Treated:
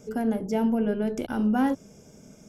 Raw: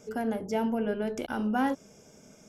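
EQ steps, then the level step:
low-shelf EQ 350 Hz +10.5 dB
high-shelf EQ 7,000 Hz +5 dB
mains-hum notches 50/100 Hz
−1.5 dB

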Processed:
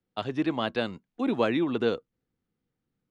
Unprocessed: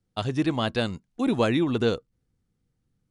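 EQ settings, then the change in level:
three-way crossover with the lows and the highs turned down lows −12 dB, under 190 Hz, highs −15 dB, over 4,100 Hz
−1.5 dB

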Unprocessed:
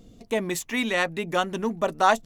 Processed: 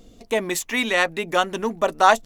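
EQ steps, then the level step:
parametric band 130 Hz −9 dB 1.9 octaves
+5.0 dB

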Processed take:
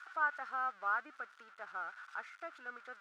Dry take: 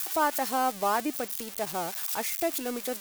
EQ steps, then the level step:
resonant band-pass 1,400 Hz, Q 12
high-frequency loss of the air 80 metres
+7.0 dB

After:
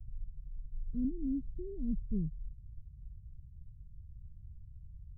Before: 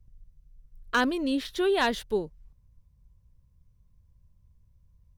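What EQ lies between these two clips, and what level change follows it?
inverse Chebyshev low-pass filter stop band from 760 Hz, stop band 70 dB
+10.5 dB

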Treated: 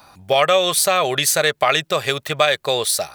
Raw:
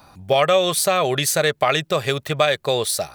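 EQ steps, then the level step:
low-shelf EQ 440 Hz −8.5 dB
+3.5 dB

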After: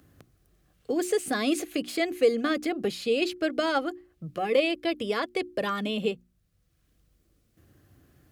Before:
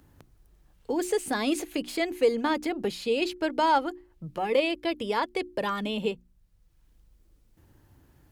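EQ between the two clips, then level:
high-pass filter 72 Hz 12 dB per octave
Butterworth band-reject 910 Hz, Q 4.2
+1.0 dB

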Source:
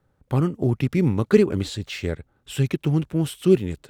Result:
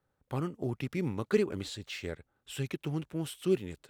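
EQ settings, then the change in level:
low-shelf EQ 320 Hz −8 dB
−7.5 dB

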